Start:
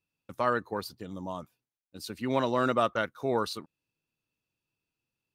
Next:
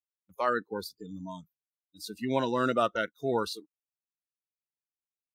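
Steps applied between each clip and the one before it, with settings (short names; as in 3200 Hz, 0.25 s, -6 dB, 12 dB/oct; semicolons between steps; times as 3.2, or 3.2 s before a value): spectral noise reduction 27 dB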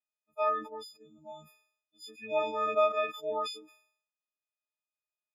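frequency quantiser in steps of 6 st; vowel filter a; sustainer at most 98 dB/s; gain +6.5 dB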